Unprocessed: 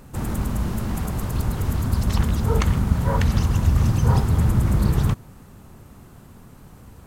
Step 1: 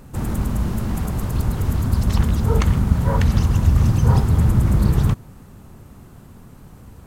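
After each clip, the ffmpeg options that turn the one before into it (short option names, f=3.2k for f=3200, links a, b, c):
-af "lowshelf=f=440:g=3"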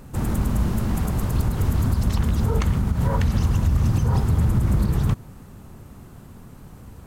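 -af "alimiter=limit=-11.5dB:level=0:latency=1:release=109"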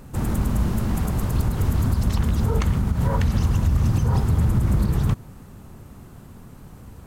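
-af anull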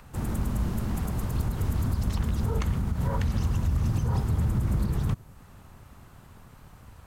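-filter_complex "[0:a]acrossover=split=140|670|4900[a][b][c][d];[b]aeval=exprs='sgn(val(0))*max(abs(val(0))-0.00266,0)':c=same[e];[c]acompressor=mode=upward:threshold=-46dB:ratio=2.5[f];[a][e][f][d]amix=inputs=4:normalize=0,volume=-6dB"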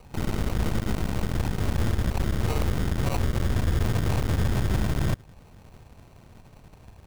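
-af "acrusher=samples=26:mix=1:aa=0.000001,aeval=exprs='0.168*(cos(1*acos(clip(val(0)/0.168,-1,1)))-cos(1*PI/2))+0.0335*(cos(8*acos(clip(val(0)/0.168,-1,1)))-cos(8*PI/2))':c=same"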